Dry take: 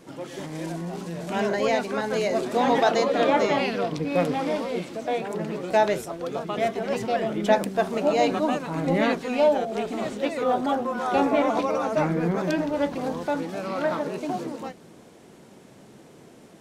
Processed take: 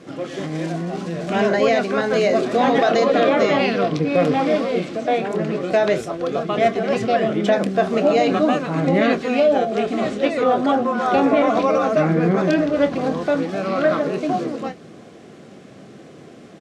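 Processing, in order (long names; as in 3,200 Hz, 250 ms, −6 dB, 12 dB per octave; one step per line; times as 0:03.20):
high-pass filter 71 Hz
brickwall limiter −14.5 dBFS, peak gain reduction 6.5 dB
Butterworth band-reject 910 Hz, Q 6
high-frequency loss of the air 73 metres
double-tracking delay 26 ms −12.5 dB
level +7.5 dB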